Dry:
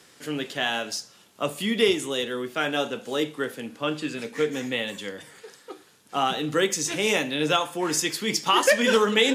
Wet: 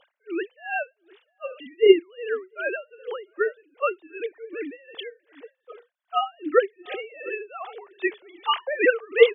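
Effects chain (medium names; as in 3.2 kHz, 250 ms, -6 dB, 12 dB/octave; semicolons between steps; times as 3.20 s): formants replaced by sine waves; echo from a far wall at 120 m, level -22 dB; logarithmic tremolo 2.6 Hz, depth 28 dB; trim +7.5 dB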